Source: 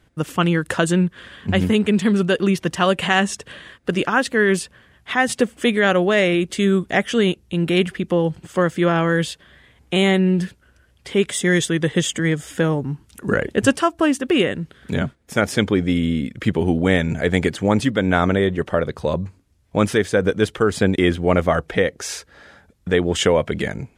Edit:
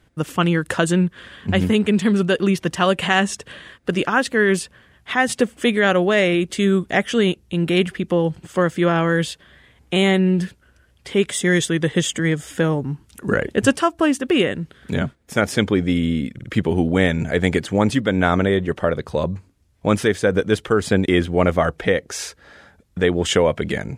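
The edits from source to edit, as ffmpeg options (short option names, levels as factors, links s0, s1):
-filter_complex "[0:a]asplit=3[s0][s1][s2];[s0]atrim=end=16.392[s3];[s1]atrim=start=16.338:end=16.392[s4];[s2]atrim=start=16.338[s5];[s3][s4]acrossfade=d=0.004:c1=hsin:c2=hsin[s6];[s6][s5]acrossfade=d=0.004:c1=hsin:c2=hsin"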